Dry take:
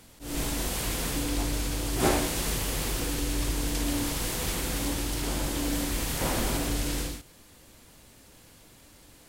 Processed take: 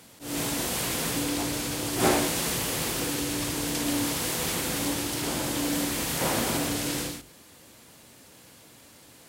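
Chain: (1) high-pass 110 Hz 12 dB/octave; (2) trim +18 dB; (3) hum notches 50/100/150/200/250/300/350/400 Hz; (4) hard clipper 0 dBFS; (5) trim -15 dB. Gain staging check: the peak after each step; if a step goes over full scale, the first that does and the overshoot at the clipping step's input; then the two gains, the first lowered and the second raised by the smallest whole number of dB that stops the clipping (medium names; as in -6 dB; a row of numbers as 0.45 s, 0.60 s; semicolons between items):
-11.5 dBFS, +6.5 dBFS, +6.5 dBFS, 0.0 dBFS, -15.0 dBFS; step 2, 6.5 dB; step 2 +11 dB, step 5 -8 dB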